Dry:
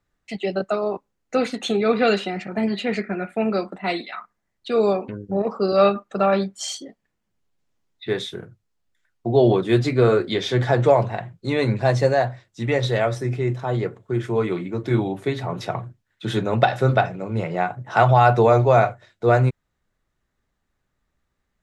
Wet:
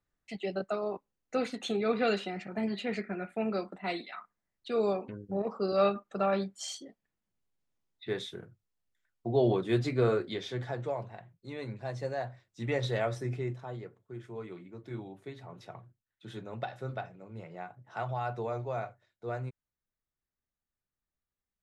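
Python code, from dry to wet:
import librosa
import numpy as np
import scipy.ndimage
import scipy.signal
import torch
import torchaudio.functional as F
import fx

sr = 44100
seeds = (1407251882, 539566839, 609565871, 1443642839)

y = fx.gain(x, sr, db=fx.line((10.09, -10.0), (10.85, -19.0), (11.92, -19.0), (12.66, -10.0), (13.36, -10.0), (13.86, -20.0)))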